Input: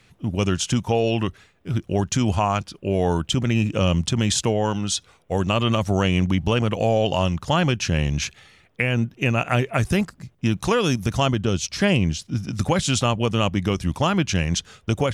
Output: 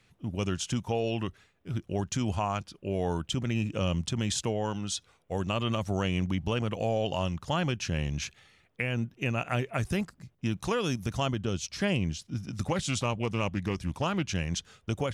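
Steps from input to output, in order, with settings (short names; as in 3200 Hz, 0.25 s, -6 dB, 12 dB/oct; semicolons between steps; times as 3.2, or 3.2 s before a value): 12.63–14.3 Doppler distortion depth 0.18 ms; gain -9 dB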